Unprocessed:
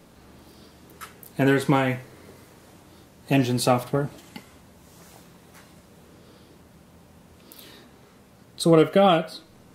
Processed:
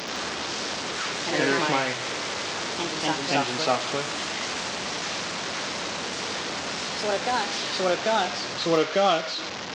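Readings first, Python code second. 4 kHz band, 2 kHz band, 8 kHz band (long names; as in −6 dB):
+9.5 dB, +6.5 dB, +8.0 dB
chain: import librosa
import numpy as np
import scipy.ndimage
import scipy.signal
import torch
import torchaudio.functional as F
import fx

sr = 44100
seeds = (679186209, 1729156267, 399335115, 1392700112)

y = fx.delta_mod(x, sr, bps=32000, step_db=-23.0)
y = fx.echo_pitch(y, sr, ms=80, semitones=2, count=2, db_per_echo=-3.0)
y = fx.highpass(y, sr, hz=700.0, slope=6)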